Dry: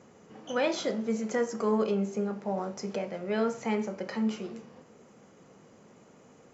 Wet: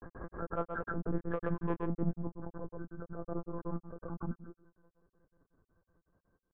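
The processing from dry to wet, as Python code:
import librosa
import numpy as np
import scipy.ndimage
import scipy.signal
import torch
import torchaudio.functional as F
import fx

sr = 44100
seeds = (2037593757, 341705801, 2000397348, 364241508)

p1 = fx.freq_compress(x, sr, knee_hz=1000.0, ratio=4.0)
p2 = fx.doppler_pass(p1, sr, speed_mps=7, closest_m=2.3, pass_at_s=1.61)
p3 = fx.peak_eq(p2, sr, hz=220.0, db=6.0, octaves=1.3)
p4 = 10.0 ** (-23.5 / 20.0) * np.tanh(p3 / 10.0 ** (-23.5 / 20.0))
p5 = fx.chorus_voices(p4, sr, voices=4, hz=1.2, base_ms=22, depth_ms=3.5, mix_pct=40)
p6 = fx.lpc_monotone(p5, sr, seeds[0], pitch_hz=170.0, order=10)
p7 = fx.granulator(p6, sr, seeds[1], grain_ms=100.0, per_s=5.4, spray_ms=100.0, spread_st=0)
p8 = fx.rider(p7, sr, range_db=4, speed_s=0.5)
p9 = p8 + fx.echo_single(p8, sr, ms=128, db=-19.5, dry=0)
p10 = fx.pre_swell(p9, sr, db_per_s=30.0)
y = p10 * 10.0 ** (3.5 / 20.0)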